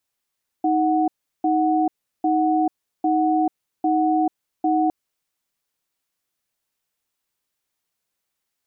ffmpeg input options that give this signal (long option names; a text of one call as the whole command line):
ffmpeg -f lavfi -i "aevalsrc='0.112*(sin(2*PI*314*t)+sin(2*PI*739*t))*clip(min(mod(t,0.8),0.44-mod(t,0.8))/0.005,0,1)':duration=4.26:sample_rate=44100" out.wav